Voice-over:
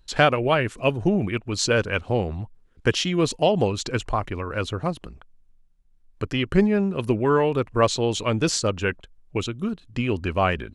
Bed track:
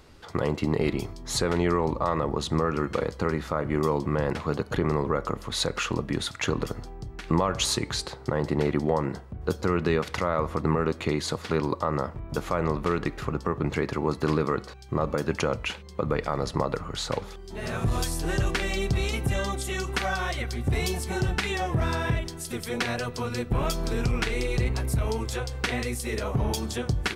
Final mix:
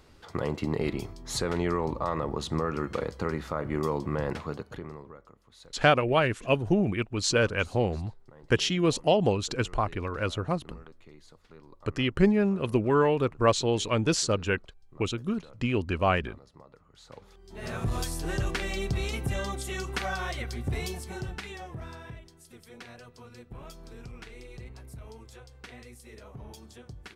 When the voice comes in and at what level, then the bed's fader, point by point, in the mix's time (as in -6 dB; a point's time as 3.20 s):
5.65 s, -3.0 dB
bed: 4.36 s -4 dB
5.33 s -26.5 dB
16.88 s -26.5 dB
17.66 s -4 dB
20.57 s -4 dB
22.21 s -18.5 dB